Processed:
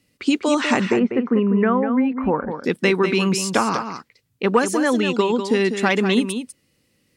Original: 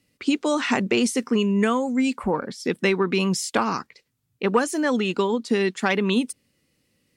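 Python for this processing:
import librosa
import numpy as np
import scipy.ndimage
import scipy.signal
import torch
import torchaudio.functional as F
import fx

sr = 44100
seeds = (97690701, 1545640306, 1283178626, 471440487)

y = fx.lowpass(x, sr, hz=1900.0, slope=24, at=(0.85, 2.64))
y = y + 10.0 ** (-8.5 / 20.0) * np.pad(y, (int(197 * sr / 1000.0), 0))[:len(y)]
y = y * librosa.db_to_amplitude(3.0)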